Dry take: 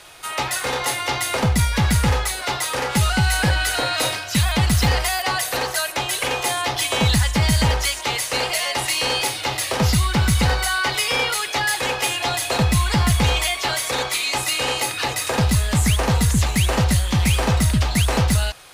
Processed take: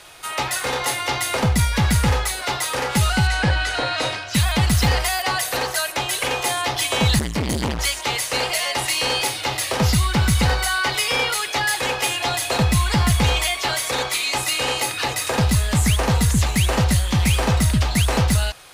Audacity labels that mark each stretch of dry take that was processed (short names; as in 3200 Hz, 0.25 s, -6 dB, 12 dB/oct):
3.270000	4.340000	air absorption 82 m
7.190000	7.790000	core saturation saturates under 440 Hz